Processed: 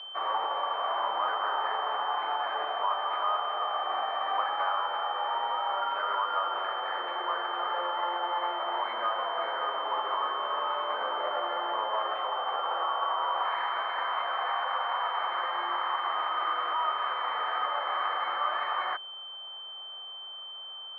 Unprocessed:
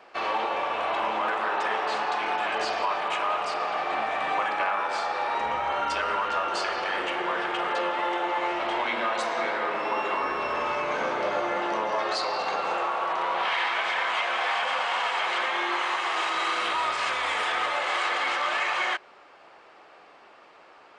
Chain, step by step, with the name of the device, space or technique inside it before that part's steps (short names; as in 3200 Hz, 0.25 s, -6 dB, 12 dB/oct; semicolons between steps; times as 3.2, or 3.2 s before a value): toy sound module (decimation joined by straight lines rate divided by 6×; pulse-width modulation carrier 3100 Hz; speaker cabinet 730–4200 Hz, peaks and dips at 1200 Hz +4 dB, 1900 Hz +3 dB, 2800 Hz -5 dB)